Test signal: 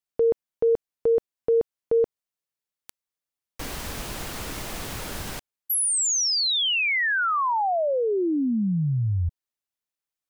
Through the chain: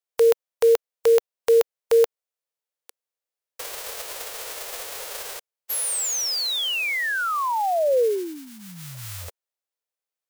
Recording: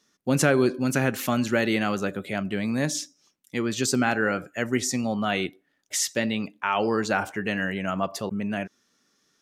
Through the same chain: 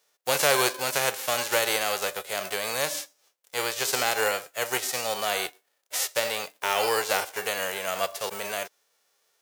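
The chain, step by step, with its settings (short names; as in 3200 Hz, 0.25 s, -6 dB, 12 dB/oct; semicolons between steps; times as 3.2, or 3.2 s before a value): spectral whitening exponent 0.3; resonant low shelf 340 Hz -11.5 dB, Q 3; gain -2 dB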